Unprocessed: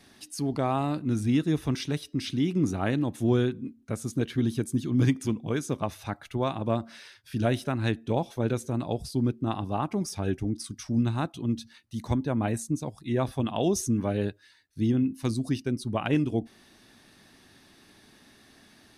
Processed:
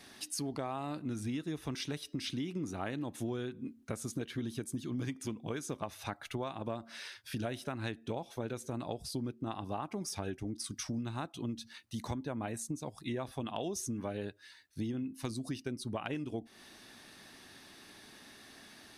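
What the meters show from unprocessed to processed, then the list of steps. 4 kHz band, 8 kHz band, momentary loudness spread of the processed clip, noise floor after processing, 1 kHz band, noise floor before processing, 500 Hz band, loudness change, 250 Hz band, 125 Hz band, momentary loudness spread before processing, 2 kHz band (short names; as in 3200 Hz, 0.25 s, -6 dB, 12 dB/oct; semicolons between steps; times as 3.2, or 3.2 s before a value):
-4.5 dB, -4.0 dB, 15 LU, -60 dBFS, -8.5 dB, -58 dBFS, -10.0 dB, -10.5 dB, -11.5 dB, -13.0 dB, 8 LU, -7.0 dB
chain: low shelf 300 Hz -7.5 dB; compressor 6:1, threshold -38 dBFS, peak gain reduction 14.5 dB; gain +3 dB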